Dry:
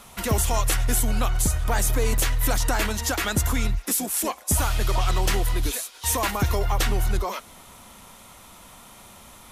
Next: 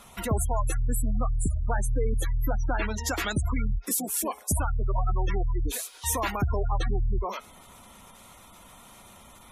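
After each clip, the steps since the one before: de-hum 424.3 Hz, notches 40; spectral gate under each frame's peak -20 dB strong; gain -3 dB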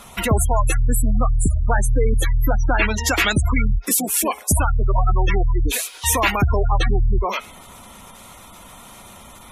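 dynamic EQ 2500 Hz, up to +8 dB, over -53 dBFS, Q 1.6; gain +8.5 dB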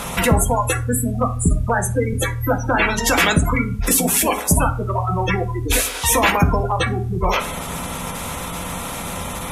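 per-bin compression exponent 0.6; on a send at -4.5 dB: reverb RT60 0.40 s, pre-delay 3 ms; on the sum: gain -1 dB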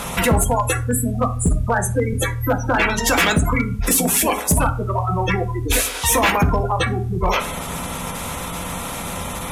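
hard clip -10 dBFS, distortion -19 dB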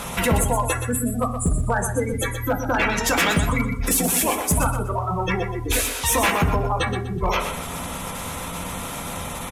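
feedback echo 0.123 s, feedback 29%, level -8.5 dB; gain -3.5 dB

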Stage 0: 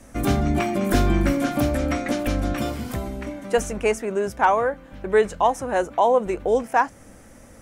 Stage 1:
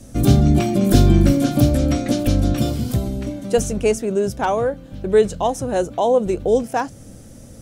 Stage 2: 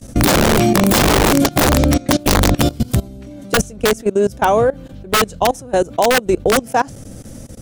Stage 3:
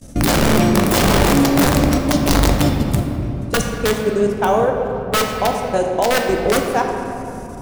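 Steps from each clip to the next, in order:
ten-band EQ 125 Hz +8 dB, 1000 Hz -9 dB, 2000 Hz -10 dB, 4000 Hz +4 dB; gain +5 dB
wrapped overs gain 9.5 dB; level quantiser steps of 21 dB; gain +8.5 dB
shoebox room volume 120 m³, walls hard, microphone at 0.32 m; gain -4 dB

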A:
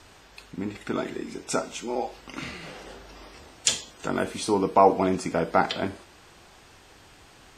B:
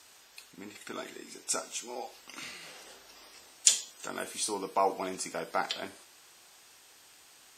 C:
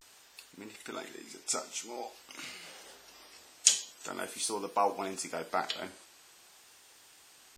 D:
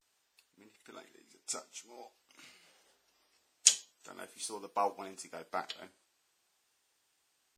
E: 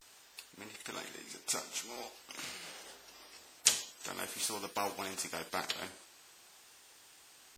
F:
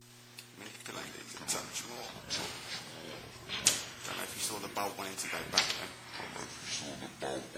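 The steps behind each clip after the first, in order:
RIAA curve recording; gain -9 dB
vibrato 0.47 Hz 66 cents; gain -1 dB
upward expander 1.5:1, over -55 dBFS
spectral compressor 2:1; gain -3 dB
echoes that change speed 80 ms, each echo -7 st, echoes 3; buzz 120 Hz, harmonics 3, -60 dBFS

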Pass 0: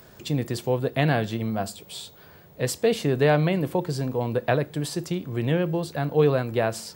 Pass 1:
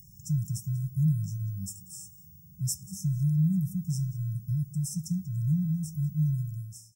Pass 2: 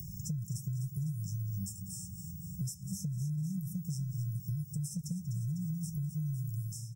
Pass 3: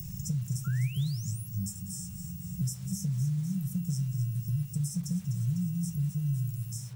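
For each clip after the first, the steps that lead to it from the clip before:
ending faded out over 0.55 s; echo 0.189 s -20 dB; FFT band-reject 200–5200 Hz
compressor, threshold -36 dBFS, peak gain reduction 14 dB; feedback echo 0.25 s, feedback 40%, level -14 dB; three-band squash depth 70%; gain +1.5 dB
level-crossing sampler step -55 dBFS; painted sound rise, 0.64–1.48, 1300–12000 Hz -52 dBFS; shoebox room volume 150 m³, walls furnished, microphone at 0.48 m; gain +3.5 dB

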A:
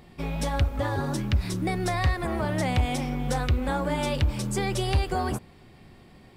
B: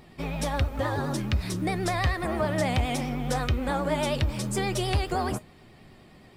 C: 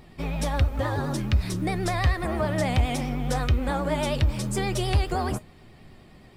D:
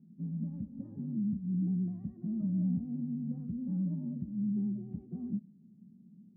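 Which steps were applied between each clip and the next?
low shelf 78 Hz -5.5 dB; vibrato 9.5 Hz 70 cents; resonator 620 Hz, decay 0.15 s, harmonics all, mix 60%; gain +7.5 dB
low shelf 81 Hz +8 dB
Butterworth band-pass 200 Hz, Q 3.2; gain +2 dB

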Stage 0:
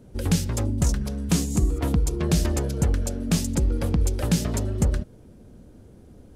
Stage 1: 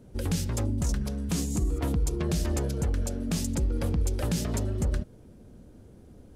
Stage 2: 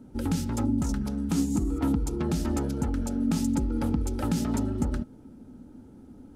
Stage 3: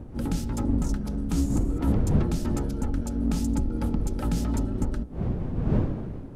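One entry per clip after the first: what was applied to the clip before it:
limiter -16.5 dBFS, peak gain reduction 6 dB; gain -2.5 dB
small resonant body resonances 260/860/1300 Hz, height 14 dB, ringing for 40 ms; gain -3.5 dB
octaver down 2 oct, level +1 dB; wind noise 190 Hz -29 dBFS; gain -2 dB

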